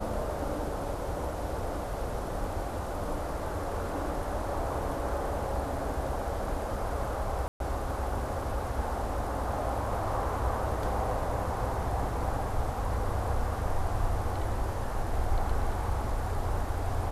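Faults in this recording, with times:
0:07.48–0:07.60: drop-out 122 ms

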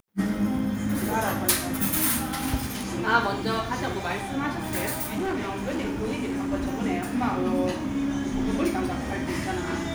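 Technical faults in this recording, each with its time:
0:05.02–0:06.54: clipping −24.5 dBFS

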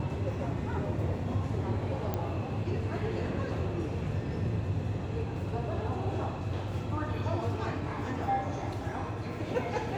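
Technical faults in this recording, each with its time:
0:02.14: click −18 dBFS

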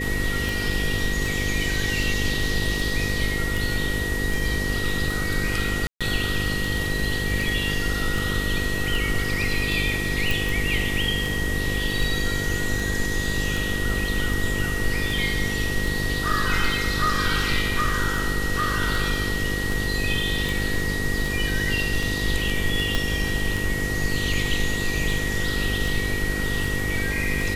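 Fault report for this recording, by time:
mains buzz 50 Hz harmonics 10 −29 dBFS
scratch tick 78 rpm
whistle 1,900 Hz −28 dBFS
0:05.87–0:06.01: drop-out 136 ms
0:10.31: click
0:22.95: click −9 dBFS

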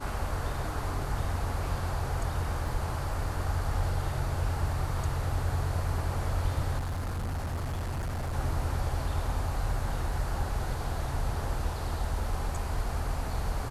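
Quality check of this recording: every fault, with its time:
0:02.68: drop-out 3 ms
0:06.78–0:08.34: clipping −29.5 dBFS

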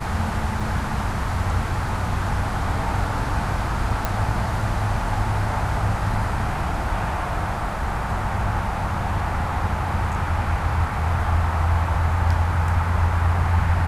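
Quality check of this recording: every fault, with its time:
0:00.60: drop-out 3.9 ms
0:04.05: click

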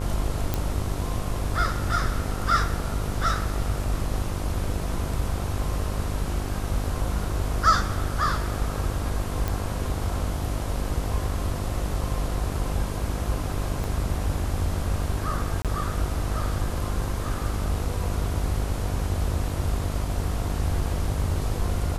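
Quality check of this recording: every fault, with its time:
mains buzz 50 Hz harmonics 27 −30 dBFS
0:00.54: click −10 dBFS
0:09.48: click
0:13.84: click
0:15.62–0:15.65: drop-out 27 ms

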